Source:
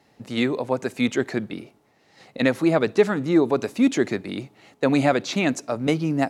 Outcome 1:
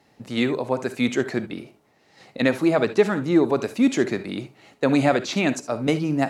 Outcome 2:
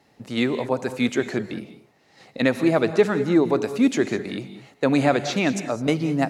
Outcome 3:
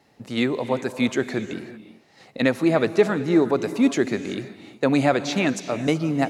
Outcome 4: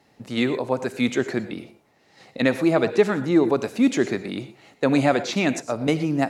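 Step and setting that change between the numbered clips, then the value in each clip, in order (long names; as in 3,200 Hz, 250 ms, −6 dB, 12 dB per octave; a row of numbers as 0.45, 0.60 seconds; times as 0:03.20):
reverb whose tail is shaped and stops, gate: 90, 230, 400, 140 milliseconds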